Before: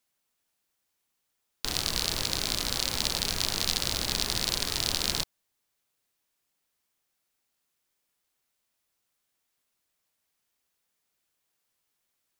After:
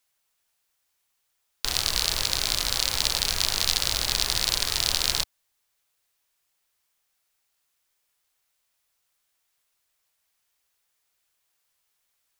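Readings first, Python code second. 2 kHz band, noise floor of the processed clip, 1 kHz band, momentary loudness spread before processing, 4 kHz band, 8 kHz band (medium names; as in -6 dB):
+4.0 dB, -75 dBFS, +3.0 dB, 3 LU, +4.5 dB, +4.5 dB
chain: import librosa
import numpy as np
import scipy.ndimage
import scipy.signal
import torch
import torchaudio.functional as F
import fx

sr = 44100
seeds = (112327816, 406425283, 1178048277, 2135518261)

y = fx.peak_eq(x, sr, hz=230.0, db=-10.5, octaves=1.9)
y = y * 10.0 ** (4.5 / 20.0)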